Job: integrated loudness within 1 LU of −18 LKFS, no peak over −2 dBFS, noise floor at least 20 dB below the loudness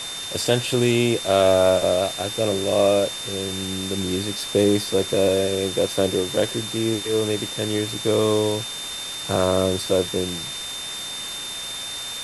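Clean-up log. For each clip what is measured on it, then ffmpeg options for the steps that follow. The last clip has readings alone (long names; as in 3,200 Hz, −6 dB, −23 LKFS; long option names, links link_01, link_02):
interfering tone 3,600 Hz; level of the tone −31 dBFS; background noise floor −32 dBFS; target noise floor −42 dBFS; integrated loudness −22.0 LKFS; sample peak −4.5 dBFS; target loudness −18.0 LKFS
→ -af "bandreject=frequency=3600:width=30"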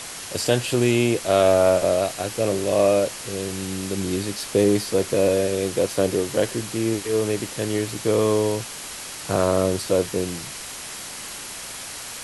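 interfering tone none found; background noise floor −35 dBFS; target noise floor −43 dBFS
→ -af "afftdn=noise_reduction=8:noise_floor=-35"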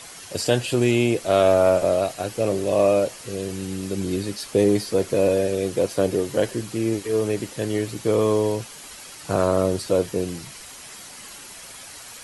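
background noise floor −41 dBFS; target noise floor −43 dBFS
→ -af "afftdn=noise_reduction=6:noise_floor=-41"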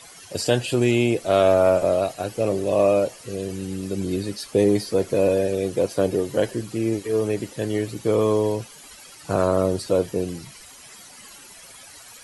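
background noise floor −45 dBFS; integrated loudness −22.5 LKFS; sample peak −5.5 dBFS; target loudness −18.0 LKFS
→ -af "volume=4.5dB,alimiter=limit=-2dB:level=0:latency=1"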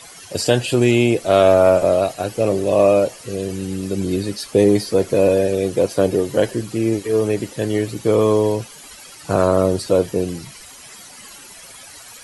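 integrated loudness −18.0 LKFS; sample peak −2.0 dBFS; background noise floor −41 dBFS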